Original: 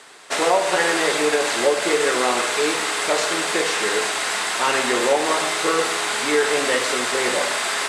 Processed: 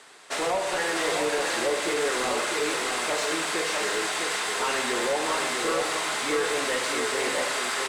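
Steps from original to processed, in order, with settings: soft clip -15 dBFS, distortion -15 dB; on a send: echo 0.652 s -5 dB; on the sum: gain -5.5 dB

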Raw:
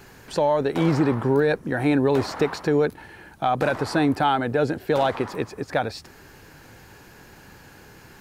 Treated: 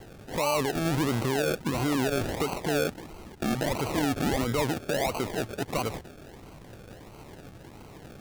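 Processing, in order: limiter -20 dBFS, peak gain reduction 9.5 dB; decimation with a swept rate 35×, swing 60% 1.5 Hz; gain +1 dB

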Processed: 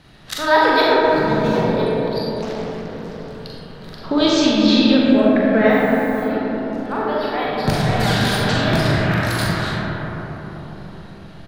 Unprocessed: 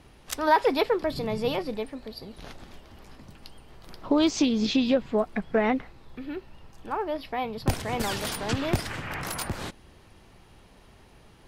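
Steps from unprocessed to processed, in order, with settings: 0.81–1.69 median filter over 15 samples; fifteen-band EQ 160 Hz +10 dB, 630 Hz +3 dB, 1600 Hz +9 dB, 4000 Hz +11 dB; 5.69–6.23 added noise violet -50 dBFS; doubler 41 ms -6 dB; reverb RT60 4.6 s, pre-delay 5 ms, DRR -5 dB; 2.42–3.4 Doppler distortion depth 0.55 ms; gain -1 dB

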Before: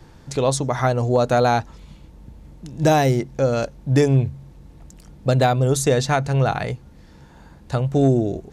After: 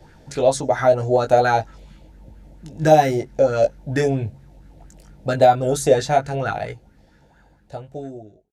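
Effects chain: ending faded out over 2.53 s; bell 1100 Hz -13.5 dB 0.38 oct; doubler 19 ms -5 dB; LFO bell 4.4 Hz 570–1600 Hz +13 dB; gain -4 dB

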